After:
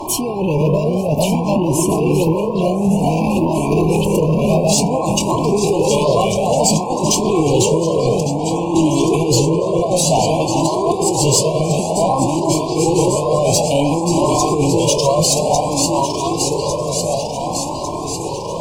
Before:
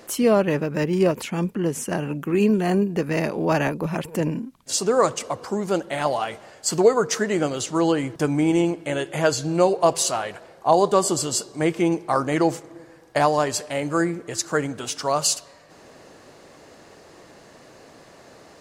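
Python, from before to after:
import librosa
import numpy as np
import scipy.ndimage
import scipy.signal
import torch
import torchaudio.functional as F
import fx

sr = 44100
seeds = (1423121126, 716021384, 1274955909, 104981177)

y = fx.reverse_delay_fb(x, sr, ms=576, feedback_pct=77, wet_db=-8.0)
y = fx.low_shelf(y, sr, hz=160.0, db=11.5)
y = fx.over_compress(y, sr, threshold_db=-22.0, ratio=-1.0)
y = fx.fold_sine(y, sr, drive_db=5, ceiling_db=-6.0)
y = fx.dmg_noise_band(y, sr, seeds[0], low_hz=98.0, high_hz=1300.0, level_db=-25.0)
y = fx.brickwall_bandstop(y, sr, low_hz=1100.0, high_hz=2300.0)
y = fx.doubler(y, sr, ms=25.0, db=-13.5)
y = fx.echo_stepped(y, sr, ms=450, hz=490.0, octaves=1.4, feedback_pct=70, wet_db=-3.5)
y = fx.comb_cascade(y, sr, direction='rising', hz=0.56)
y = y * librosa.db_to_amplitude(3.0)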